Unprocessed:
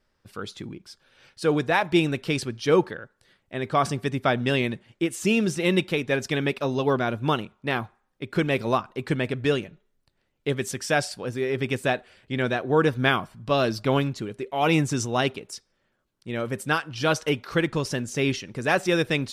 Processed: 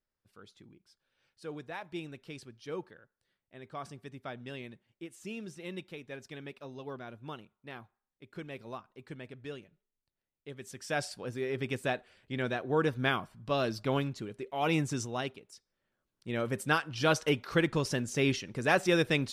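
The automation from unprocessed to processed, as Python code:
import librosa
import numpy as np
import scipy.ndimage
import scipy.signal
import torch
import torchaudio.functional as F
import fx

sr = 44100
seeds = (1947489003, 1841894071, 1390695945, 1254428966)

y = fx.gain(x, sr, db=fx.line((10.52, -19.5), (11.04, -8.0), (14.96, -8.0), (15.5, -16.0), (16.3, -4.0)))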